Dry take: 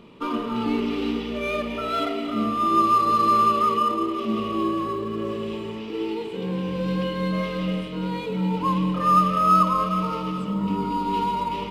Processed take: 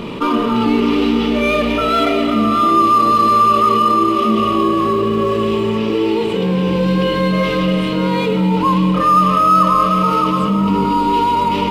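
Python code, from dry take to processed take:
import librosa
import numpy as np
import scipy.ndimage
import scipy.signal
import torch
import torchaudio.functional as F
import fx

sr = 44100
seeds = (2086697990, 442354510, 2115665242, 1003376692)

y = x + 10.0 ** (-9.0 / 20.0) * np.pad(x, (int(616 * sr / 1000.0), 0))[:len(x)]
y = fx.env_flatten(y, sr, amount_pct=50)
y = y * 10.0 ** (5.0 / 20.0)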